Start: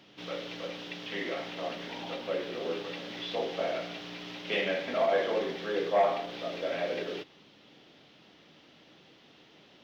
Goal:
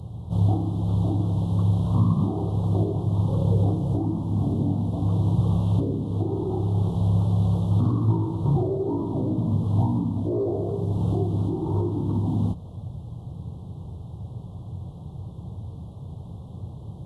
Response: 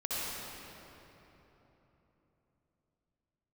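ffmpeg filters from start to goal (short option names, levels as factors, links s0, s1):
-filter_complex "[0:a]asuperstop=centerf=3300:order=8:qfactor=0.66,asplit=2[s0][s1];[s1]acompressor=threshold=0.0112:ratio=6,volume=1.12[s2];[s0][s2]amix=inputs=2:normalize=0,alimiter=level_in=1.19:limit=0.0631:level=0:latency=1:release=347,volume=0.841,asetrate=25442,aresample=44100,lowshelf=f=170:t=q:w=1.5:g=13,volume=2.51"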